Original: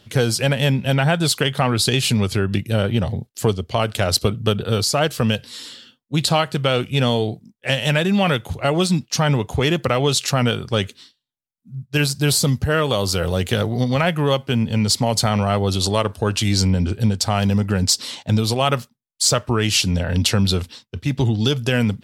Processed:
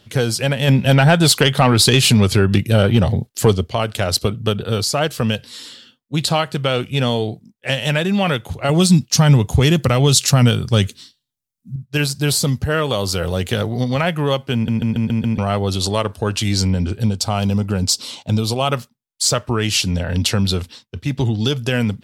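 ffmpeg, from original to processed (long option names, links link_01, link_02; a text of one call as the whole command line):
ffmpeg -i in.wav -filter_complex "[0:a]asplit=3[link_01][link_02][link_03];[link_01]afade=type=out:start_time=0.67:duration=0.02[link_04];[link_02]acontrast=70,afade=type=in:start_time=0.67:duration=0.02,afade=type=out:start_time=3.67:duration=0.02[link_05];[link_03]afade=type=in:start_time=3.67:duration=0.02[link_06];[link_04][link_05][link_06]amix=inputs=3:normalize=0,asettb=1/sr,asplit=3[link_07][link_08][link_09];[link_07]atrim=end=8.694[link_10];[link_08]atrim=start=8.69:end=11.76,asetpts=PTS-STARTPTS,afade=type=in:duration=0.004:curve=qsin,afade=type=out:start_time=3.066:duration=0.004:curve=qsin,bass=frequency=250:gain=9,treble=frequency=4000:gain=8[link_11];[link_09]atrim=start=11.756[link_12];[link_10][link_11]acrossfade=duration=0.004:curve1=hsin:curve2=qsin[link_13];[link_13][link_12]acrossfade=duration=0.004:curve1=qsin:curve2=hsin,asettb=1/sr,asplit=3[link_14][link_15][link_16];[link_14]atrim=end=17.054[link_17];[link_15]atrim=start=17.05:end=18.73,asetpts=PTS-STARTPTS,afade=type=in:duration=0.004:curve=qsin,afade=type=out:start_time=1.676:duration=0.004:curve=qsin,equalizer=frequency=1800:width_type=o:width=0.33:gain=-11[link_18];[link_16]atrim=start=18.726[link_19];[link_17][link_18]acrossfade=duration=0.004:curve1=hsin:curve2=qsin[link_20];[link_20][link_19]acrossfade=duration=0.004:curve1=qsin:curve2=hsin,asplit=7[link_21][link_22][link_23][link_24][link_25][link_26][link_27];[link_21]atrim=end=14.682[link_28];[link_22]atrim=start=14.538:end=14.682[link_29];[link_23]atrim=start=14.538:end=14.682[link_30];[link_24]atrim=start=14.538:end=14.682[link_31];[link_25]atrim=start=14.538:end=14.682[link_32];[link_26]atrim=start=14.538:end=14.682[link_33];[link_27]atrim=start=15.378[link_34];[link_28][link_29]acrossfade=duration=0.004:curve1=hsin:curve2=hsin[link_35];[link_35][link_30]acrossfade=duration=0.004:curve1=hsin:curve2=hsin[link_36];[link_36][link_31]acrossfade=duration=0.004:curve1=hsin:curve2=hsin[link_37];[link_37][link_32]acrossfade=duration=0.004:curve1=hsin:curve2=hsin[link_38];[link_38][link_33]acrossfade=duration=0.004:curve1=hsin:curve2=hsin[link_39];[link_39][link_34]acrossfade=duration=0.004:curve1=hsin:curve2=hsin" out.wav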